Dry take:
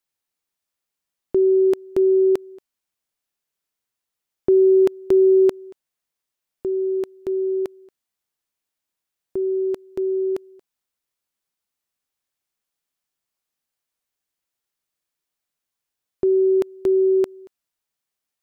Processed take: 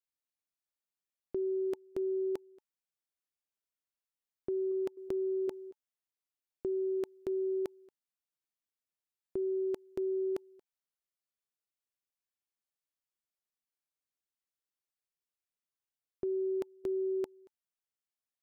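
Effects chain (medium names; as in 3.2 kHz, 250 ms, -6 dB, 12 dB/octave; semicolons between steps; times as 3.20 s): 4.71–5.48 s: compression 12:1, threshold -17 dBFS, peak gain reduction 5.5 dB; band-stop 870 Hz, Q 23; level held to a coarse grid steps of 13 dB; trim -6.5 dB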